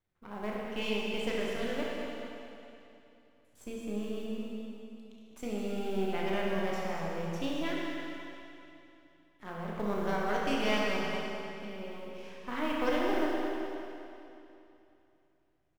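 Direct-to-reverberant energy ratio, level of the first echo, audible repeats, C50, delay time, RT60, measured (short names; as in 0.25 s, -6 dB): -5.0 dB, -9.5 dB, 1, -2.5 dB, 0.216 s, 2.9 s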